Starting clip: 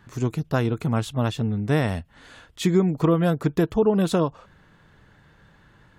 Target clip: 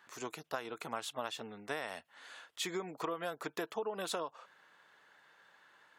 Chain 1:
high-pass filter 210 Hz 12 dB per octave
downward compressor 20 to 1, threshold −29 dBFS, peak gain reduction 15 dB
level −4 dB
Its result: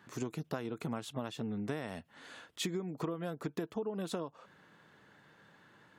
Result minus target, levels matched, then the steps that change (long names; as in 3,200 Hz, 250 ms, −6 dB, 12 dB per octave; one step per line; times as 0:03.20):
250 Hz band +7.0 dB
change: high-pass filter 680 Hz 12 dB per octave